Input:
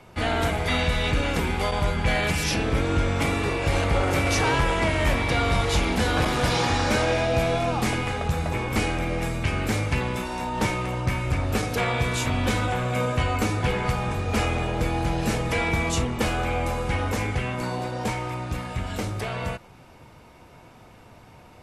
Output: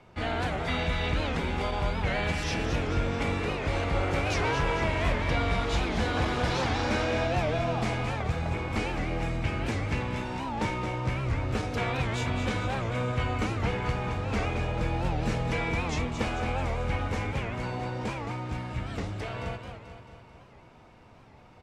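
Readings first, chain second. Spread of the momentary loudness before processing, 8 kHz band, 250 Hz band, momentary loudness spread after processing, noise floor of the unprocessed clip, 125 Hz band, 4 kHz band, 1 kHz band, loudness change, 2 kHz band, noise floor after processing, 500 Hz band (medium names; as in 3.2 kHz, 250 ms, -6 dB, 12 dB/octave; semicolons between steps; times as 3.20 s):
6 LU, -11.0 dB, -5.0 dB, 6 LU, -50 dBFS, -4.0 dB, -6.5 dB, -5.0 dB, -5.0 dB, -5.5 dB, -53 dBFS, -5.0 dB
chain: distance through air 75 m; feedback delay 219 ms, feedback 57%, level -8 dB; warped record 78 rpm, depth 160 cents; trim -5.5 dB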